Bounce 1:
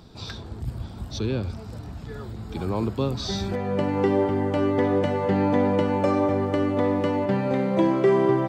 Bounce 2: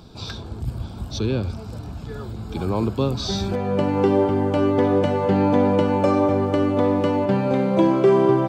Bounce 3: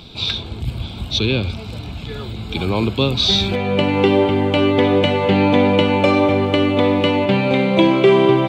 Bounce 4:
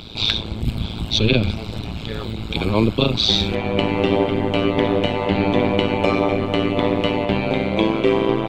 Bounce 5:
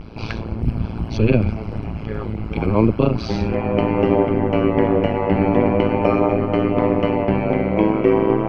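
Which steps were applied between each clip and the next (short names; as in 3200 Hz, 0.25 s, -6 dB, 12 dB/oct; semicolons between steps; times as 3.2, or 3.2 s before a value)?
notch 1900 Hz, Q 5.2; gain +3.5 dB
band shelf 2900 Hz +13 dB 1.2 oct; gain +3.5 dB
vocal rider within 5 dB 2 s; AM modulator 110 Hz, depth 90%; gain +1 dB
vibrato 0.35 Hz 39 cents; running mean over 12 samples; gain +2 dB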